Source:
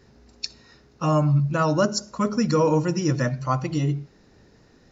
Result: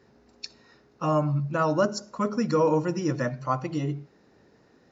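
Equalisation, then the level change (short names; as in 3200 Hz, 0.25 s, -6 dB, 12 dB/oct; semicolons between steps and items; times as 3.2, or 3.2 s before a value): HPF 280 Hz 6 dB/oct; high shelf 2500 Hz -9.5 dB; 0.0 dB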